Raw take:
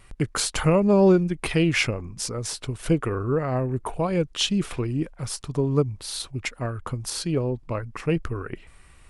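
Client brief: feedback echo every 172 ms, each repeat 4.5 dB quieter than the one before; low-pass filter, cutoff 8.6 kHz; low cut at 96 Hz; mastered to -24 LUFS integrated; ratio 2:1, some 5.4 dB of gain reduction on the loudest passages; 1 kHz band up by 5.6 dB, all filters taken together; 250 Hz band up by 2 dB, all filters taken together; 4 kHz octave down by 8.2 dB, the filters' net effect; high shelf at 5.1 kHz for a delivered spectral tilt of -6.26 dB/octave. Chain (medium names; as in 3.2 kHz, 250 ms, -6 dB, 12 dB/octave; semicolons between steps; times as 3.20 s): high-pass 96 Hz; low-pass 8.6 kHz; peaking EQ 250 Hz +3 dB; peaking EQ 1 kHz +7.5 dB; peaking EQ 4 kHz -9 dB; treble shelf 5.1 kHz -6.5 dB; compression 2:1, threshold -21 dBFS; feedback delay 172 ms, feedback 60%, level -4.5 dB; trim +1 dB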